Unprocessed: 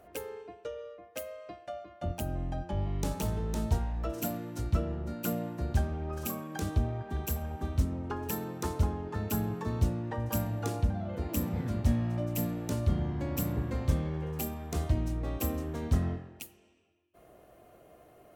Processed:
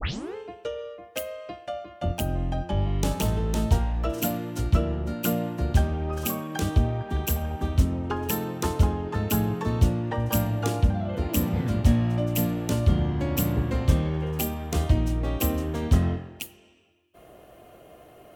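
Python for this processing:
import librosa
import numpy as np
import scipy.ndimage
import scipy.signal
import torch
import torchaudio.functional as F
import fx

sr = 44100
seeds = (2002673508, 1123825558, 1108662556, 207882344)

y = fx.tape_start_head(x, sr, length_s=0.35)
y = fx.peak_eq(y, sr, hz=3000.0, db=5.5, octaves=0.48)
y = y * 10.0 ** (7.0 / 20.0)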